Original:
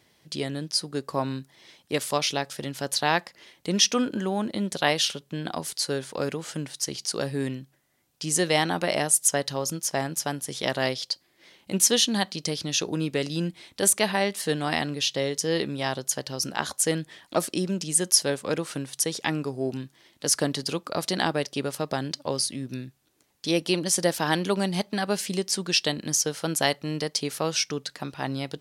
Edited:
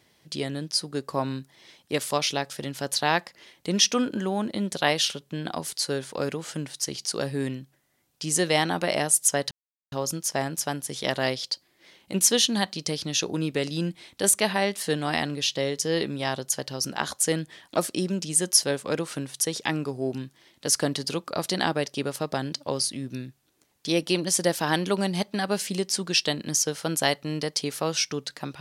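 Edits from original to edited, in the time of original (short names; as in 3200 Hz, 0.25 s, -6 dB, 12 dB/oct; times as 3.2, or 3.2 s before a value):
9.51 insert silence 0.41 s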